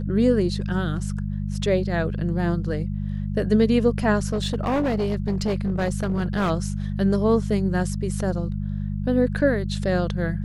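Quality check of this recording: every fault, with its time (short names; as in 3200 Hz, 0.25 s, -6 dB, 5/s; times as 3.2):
hum 50 Hz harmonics 4 -27 dBFS
4.3–6.51 clipped -19 dBFS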